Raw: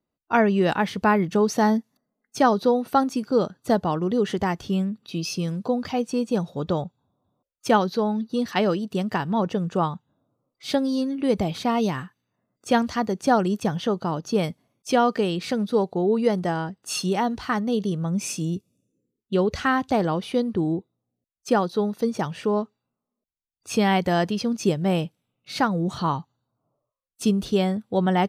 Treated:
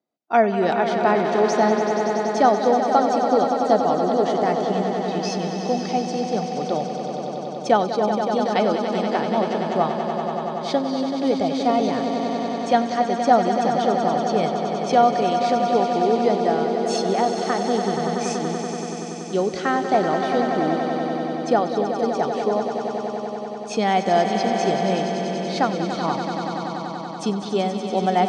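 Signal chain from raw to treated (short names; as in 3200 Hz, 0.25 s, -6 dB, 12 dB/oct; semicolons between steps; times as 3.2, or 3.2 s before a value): speaker cabinet 230–7100 Hz, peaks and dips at 710 Hz +8 dB, 1000 Hz -5 dB, 1600 Hz -3 dB; notch 2800 Hz, Q 10; swelling echo 95 ms, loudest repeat 5, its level -9.5 dB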